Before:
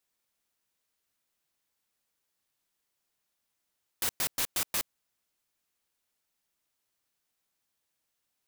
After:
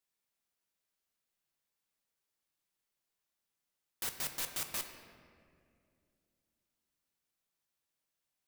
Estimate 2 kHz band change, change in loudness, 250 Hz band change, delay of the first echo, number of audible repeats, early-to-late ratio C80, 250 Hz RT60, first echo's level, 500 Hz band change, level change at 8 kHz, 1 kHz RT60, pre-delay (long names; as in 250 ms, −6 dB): −6.0 dB, −7.0 dB, −5.5 dB, no echo audible, no echo audible, 9.0 dB, 3.4 s, no echo audible, −5.5 dB, −6.5 dB, 2.0 s, 5 ms